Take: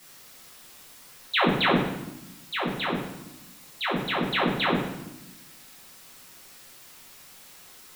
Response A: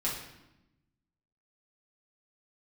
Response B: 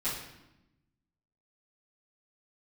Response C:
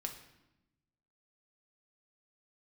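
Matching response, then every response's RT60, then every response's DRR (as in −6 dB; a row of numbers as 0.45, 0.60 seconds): A; 0.90, 0.90, 0.95 seconds; −6.5, −14.5, 3.0 decibels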